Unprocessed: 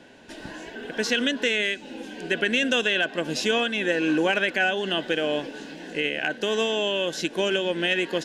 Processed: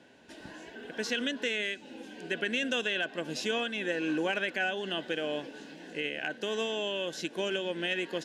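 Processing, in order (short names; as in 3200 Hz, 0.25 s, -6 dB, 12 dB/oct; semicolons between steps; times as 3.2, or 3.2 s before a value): HPF 54 Hz; gain -8 dB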